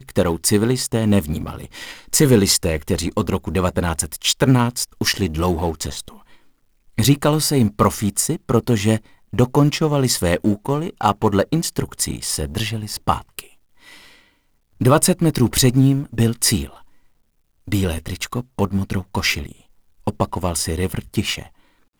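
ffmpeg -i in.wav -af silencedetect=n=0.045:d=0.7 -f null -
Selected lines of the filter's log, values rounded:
silence_start: 6.08
silence_end: 6.98 | silence_duration: 0.90
silence_start: 13.40
silence_end: 14.81 | silence_duration: 1.41
silence_start: 16.67
silence_end: 17.68 | silence_duration: 1.01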